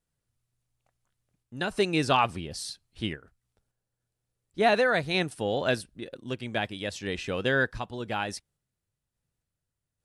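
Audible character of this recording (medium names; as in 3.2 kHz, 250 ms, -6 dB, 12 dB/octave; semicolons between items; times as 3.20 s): random-step tremolo; AAC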